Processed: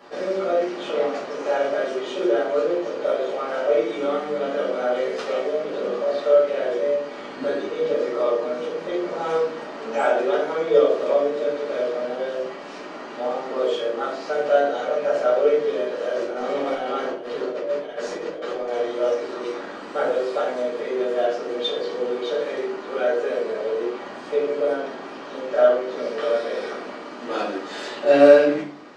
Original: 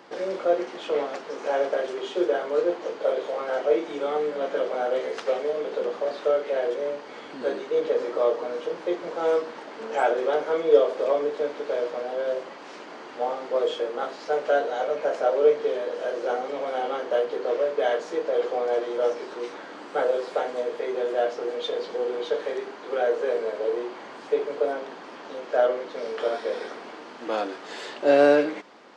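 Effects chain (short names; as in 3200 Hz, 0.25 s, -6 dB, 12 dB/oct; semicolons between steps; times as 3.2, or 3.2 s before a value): dynamic EQ 600 Hz, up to -4 dB, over -30 dBFS, Q 0.71; 16.14–18.69 negative-ratio compressor -32 dBFS, ratio -0.5; reverb RT60 0.45 s, pre-delay 5 ms, DRR -6.5 dB; gain -4.5 dB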